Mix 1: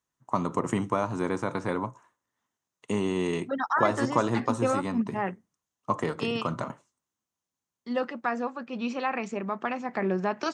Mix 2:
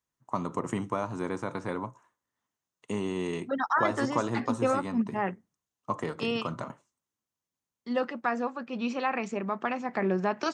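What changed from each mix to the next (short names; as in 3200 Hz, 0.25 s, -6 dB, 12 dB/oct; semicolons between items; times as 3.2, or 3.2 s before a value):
first voice -4.0 dB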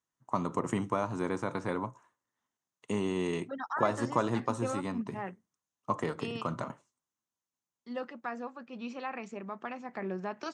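second voice -9.0 dB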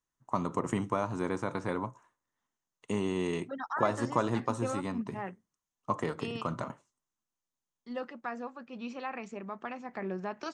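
master: remove HPF 78 Hz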